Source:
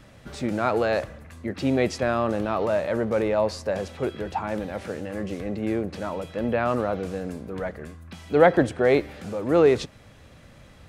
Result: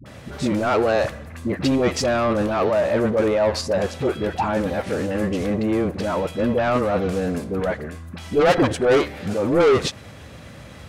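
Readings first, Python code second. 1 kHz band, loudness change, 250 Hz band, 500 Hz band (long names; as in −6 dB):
+4.0 dB, +4.0 dB, +4.5 dB, +3.5 dB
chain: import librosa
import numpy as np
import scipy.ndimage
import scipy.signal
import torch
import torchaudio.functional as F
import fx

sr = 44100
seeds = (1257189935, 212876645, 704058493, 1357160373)

p1 = scipy.signal.sosfilt(scipy.signal.butter(4, 57.0, 'highpass', fs=sr, output='sos'), x)
p2 = fx.level_steps(p1, sr, step_db=18)
p3 = p1 + (p2 * librosa.db_to_amplitude(2.0))
p4 = 10.0 ** (-17.0 / 20.0) * np.tanh(p3 / 10.0 ** (-17.0 / 20.0))
p5 = fx.dispersion(p4, sr, late='highs', ms=59.0, hz=550.0)
y = p5 * librosa.db_to_amplitude(4.5)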